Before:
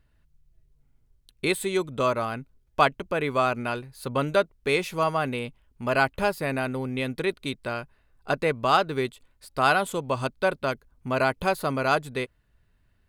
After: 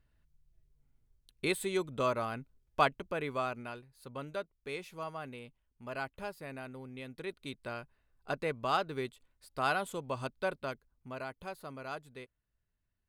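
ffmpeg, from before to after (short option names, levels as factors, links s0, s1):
-af "volume=0.944,afade=t=out:st=2.81:d=1.05:silence=0.334965,afade=t=in:st=7.1:d=0.58:silence=0.473151,afade=t=out:st=10.51:d=0.73:silence=0.375837"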